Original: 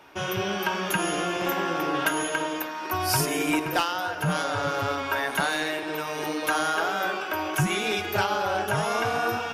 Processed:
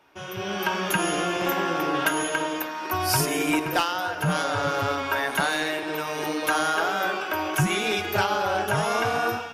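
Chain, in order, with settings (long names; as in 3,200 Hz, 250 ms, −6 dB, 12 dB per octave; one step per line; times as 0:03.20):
automatic gain control gain up to 11.5 dB
level −8.5 dB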